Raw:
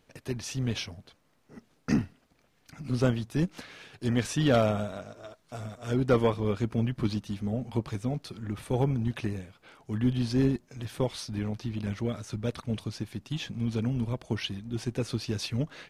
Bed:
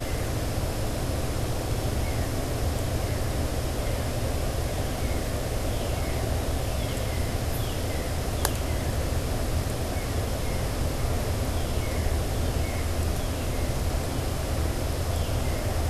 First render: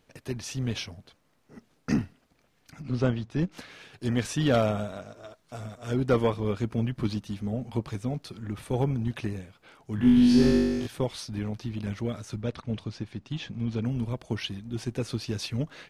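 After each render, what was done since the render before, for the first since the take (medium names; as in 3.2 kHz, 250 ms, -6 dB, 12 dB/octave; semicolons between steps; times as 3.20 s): 2.82–3.52 s: distance through air 100 m; 9.96–10.87 s: flutter echo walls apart 3.5 m, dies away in 1.4 s; 12.42–13.85 s: distance through air 85 m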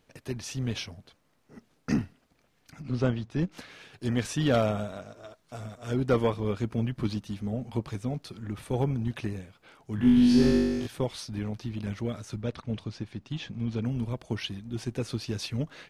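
trim -1 dB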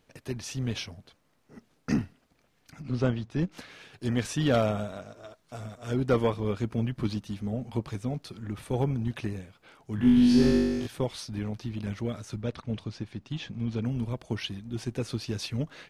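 no audible change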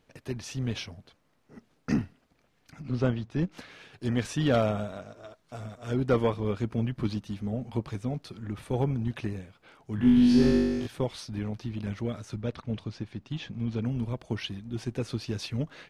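treble shelf 5.9 kHz -5.5 dB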